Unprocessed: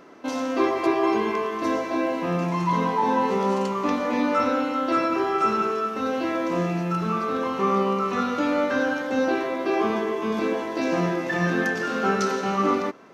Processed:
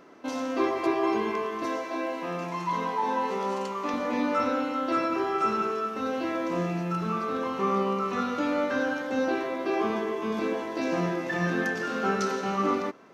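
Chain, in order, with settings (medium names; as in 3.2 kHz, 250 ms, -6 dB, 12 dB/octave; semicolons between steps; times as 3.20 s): 1.65–3.94 s: high-pass 410 Hz 6 dB/octave; trim -4 dB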